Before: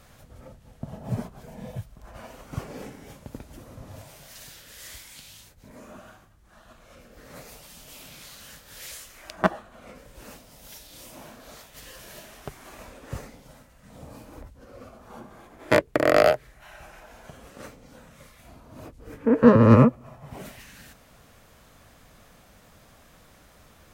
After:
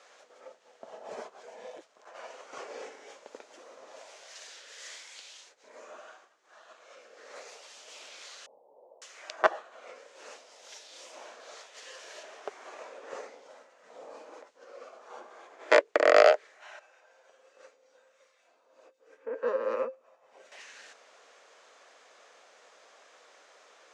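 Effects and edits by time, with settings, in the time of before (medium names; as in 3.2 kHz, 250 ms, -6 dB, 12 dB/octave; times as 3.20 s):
1.68–2.15 s: transformer saturation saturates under 250 Hz
8.46–9.02 s: steep low-pass 910 Hz 72 dB/octave
12.23–14.34 s: tilt shelf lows +4 dB, about 1.5 kHz
16.79–20.52 s: feedback comb 530 Hz, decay 0.22 s, harmonics odd, mix 80%
whole clip: elliptic band-pass 440–6900 Hz, stop band 60 dB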